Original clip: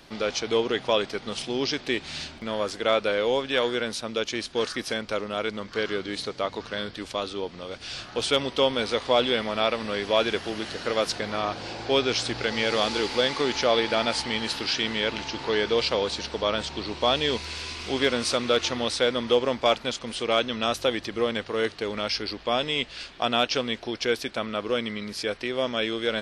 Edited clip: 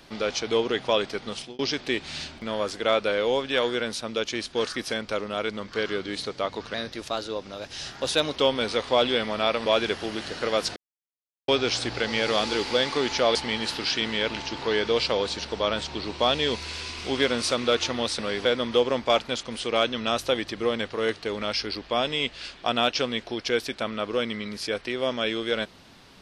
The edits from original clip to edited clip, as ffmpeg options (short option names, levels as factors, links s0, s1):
-filter_complex "[0:a]asplit=10[s0][s1][s2][s3][s4][s5][s6][s7][s8][s9];[s0]atrim=end=1.59,asetpts=PTS-STARTPTS,afade=t=out:st=1.18:d=0.41:c=qsin[s10];[s1]atrim=start=1.59:end=6.744,asetpts=PTS-STARTPTS,afade=t=in:d=0.004:c=hsin[s11];[s2]atrim=start=6.74:end=8.54,asetpts=PTS-STARTPTS,asetrate=48951,aresample=44100[s12];[s3]atrim=start=8.536:end=9.842[s13];[s4]atrim=start=10.098:end=11.2,asetpts=PTS-STARTPTS,afade=t=out:st=1.098:d=0.004:c=hsin[s14];[s5]atrim=start=11.2:end=11.92,asetpts=PTS-STARTPTS,volume=0[s15];[s6]atrim=start=11.92:end=13.792,asetpts=PTS-STARTPTS,afade=t=in:d=0.004:c=hsin[s16];[s7]atrim=start=14.168:end=19.012[s17];[s8]atrim=start=9.838:end=10.102[s18];[s9]atrim=start=19.008[s19];[s10][s11]concat=n=2:v=0:a=1[s20];[s20][s12]acrossfade=d=0.004:c1=hsin:c2=hsin[s21];[s21][s13]acrossfade=d=0.004:c1=hsin:c2=hsin[s22];[s14][s15][s16]concat=n=3:v=0:a=1[s23];[s22][s23]acrossfade=d=0.004:c1=hsin:c2=hsin[s24];[s24][s17]acrossfade=d=0.004:c1=hsin:c2=hsin[s25];[s25][s18]acrossfade=d=0.004:c1=hsin:c2=hsin[s26];[s26][s19]acrossfade=d=0.004:c1=hsin:c2=hsin"